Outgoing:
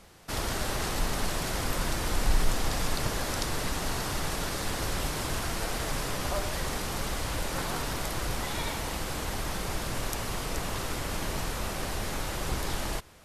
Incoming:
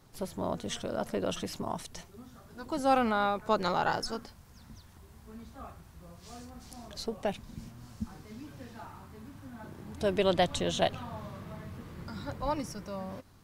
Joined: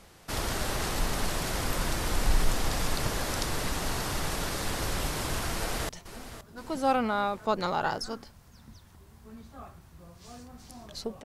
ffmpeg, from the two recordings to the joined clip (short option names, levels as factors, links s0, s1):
-filter_complex "[0:a]apad=whole_dur=11.24,atrim=end=11.24,atrim=end=5.892[s0];[1:a]atrim=start=1.908:end=7.26[s1];[s0][s1]acrossfade=d=0.004:c1=hsin:c2=hsin,asplit=2[s2][s3];[s3]afade=t=in:st=5.53:d=0.01,afade=t=out:st=5.89:d=0.01,aecho=0:1:520|1040|1560|2080|2600:0.237137|0.118569|0.0592843|0.0296422|0.0148211[s4];[s2][s4]amix=inputs=2:normalize=0"